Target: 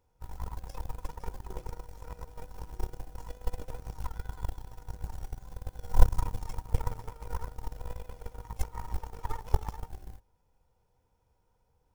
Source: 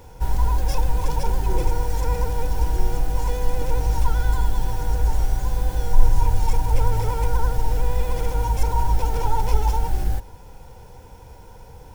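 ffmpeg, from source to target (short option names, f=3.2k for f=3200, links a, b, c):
-filter_complex "[0:a]asplit=2[a][b];[b]asetrate=58866,aresample=44100,atempo=0.749154,volume=-13dB[c];[a][c]amix=inputs=2:normalize=0,aeval=exprs='0.891*(cos(1*acos(clip(val(0)/0.891,-1,1)))-cos(1*PI/2))+0.0891*(cos(2*acos(clip(val(0)/0.891,-1,1)))-cos(2*PI/2))+0.282*(cos(3*acos(clip(val(0)/0.891,-1,1)))-cos(3*PI/2))+0.00562*(cos(4*acos(clip(val(0)/0.891,-1,1)))-cos(4*PI/2))':c=same,volume=-3.5dB"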